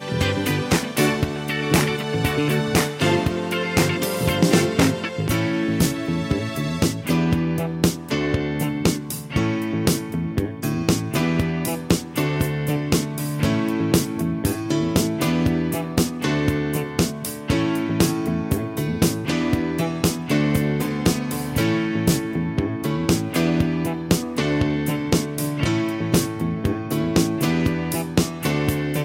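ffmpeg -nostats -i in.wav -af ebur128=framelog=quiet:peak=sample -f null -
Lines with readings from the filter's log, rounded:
Integrated loudness:
  I:         -22.0 LUFS
  Threshold: -32.0 LUFS
Loudness range:
  LRA:         2.3 LU
  Threshold: -42.0 LUFS
  LRA low:   -22.8 LUFS
  LRA high:  -20.5 LUFS
Sample peak:
  Peak:       -3.3 dBFS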